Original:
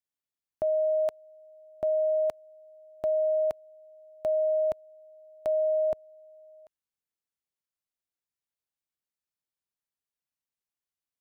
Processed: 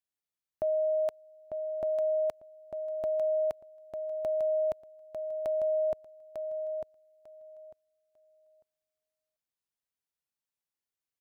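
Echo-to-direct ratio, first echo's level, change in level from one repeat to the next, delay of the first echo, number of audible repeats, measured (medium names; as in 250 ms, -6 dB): -6.5 dB, -6.5 dB, -15.0 dB, 898 ms, 2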